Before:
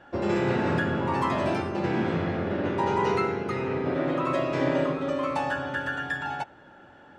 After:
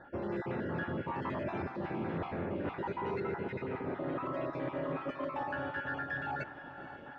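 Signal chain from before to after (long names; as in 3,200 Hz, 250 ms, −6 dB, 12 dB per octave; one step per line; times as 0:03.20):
time-frequency cells dropped at random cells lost 27%
reversed playback
downward compressor 6 to 1, threshold −37 dBFS, peak gain reduction 15.5 dB
reversed playback
soft clipping −30 dBFS, distortion −22 dB
low-pass filter 2,600 Hz 12 dB per octave
on a send: feedback delay with all-pass diffusion 479 ms, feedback 61%, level −14 dB
on the sum: level +3.5 dB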